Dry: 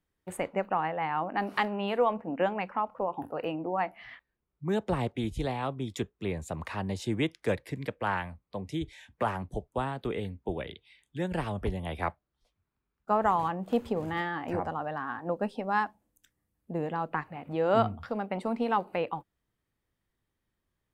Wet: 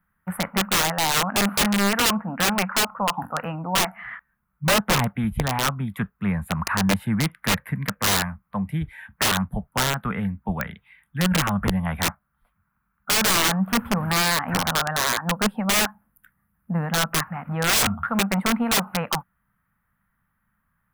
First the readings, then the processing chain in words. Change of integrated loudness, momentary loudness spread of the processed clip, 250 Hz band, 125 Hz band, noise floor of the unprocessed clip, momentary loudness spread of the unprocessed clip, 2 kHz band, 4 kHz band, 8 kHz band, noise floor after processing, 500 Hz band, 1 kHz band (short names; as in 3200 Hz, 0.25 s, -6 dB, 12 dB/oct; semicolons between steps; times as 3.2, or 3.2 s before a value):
+9.5 dB, 10 LU, +9.0 dB, +10.5 dB, -83 dBFS, 9 LU, +12.5 dB, +20.5 dB, +28.5 dB, -73 dBFS, +1.0 dB, +5.0 dB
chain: EQ curve 110 Hz 0 dB, 200 Hz +8 dB, 350 Hz -17 dB, 1400 Hz +13 dB, 6300 Hz -30 dB, 11000 Hz +4 dB; wrapped overs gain 21.5 dB; gain +7.5 dB